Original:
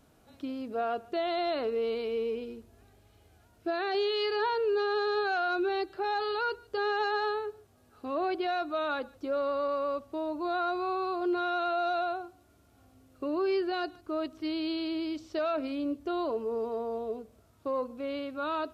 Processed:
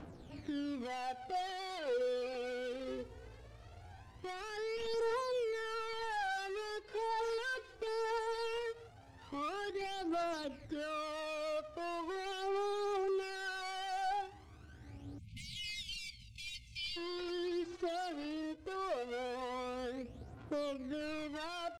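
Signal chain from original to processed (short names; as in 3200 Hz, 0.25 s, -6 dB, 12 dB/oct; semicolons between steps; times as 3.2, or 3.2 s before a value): switching dead time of 0.2 ms; spectral delete 13.07–14.6, 230–1900 Hz; compressor 12:1, threshold -40 dBFS, peak gain reduction 14.5 dB; limiter -37 dBFS, peak gain reduction 6.5 dB; tempo 0.79×; phaser 0.18 Hz, delay 3 ms, feedback 65%; hard clip -36.5 dBFS, distortion -15 dB; air absorption 86 m; speed mistake 44.1 kHz file played as 48 kHz; gain +5 dB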